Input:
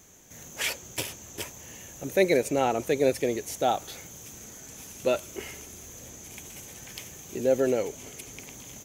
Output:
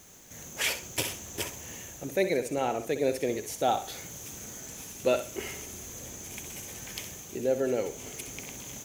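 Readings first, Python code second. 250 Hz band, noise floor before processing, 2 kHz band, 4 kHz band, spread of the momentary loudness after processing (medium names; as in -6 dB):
-3.5 dB, -47 dBFS, -1.5 dB, +0.5 dB, 12 LU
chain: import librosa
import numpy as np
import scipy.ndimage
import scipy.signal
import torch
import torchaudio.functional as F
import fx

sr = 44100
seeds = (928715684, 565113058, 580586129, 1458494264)

y = fx.quant_dither(x, sr, seeds[0], bits=10, dither='triangular')
y = fx.rider(y, sr, range_db=4, speed_s=0.5)
y = fx.room_flutter(y, sr, wall_m=10.9, rt60_s=0.36)
y = y * librosa.db_to_amplitude(-2.0)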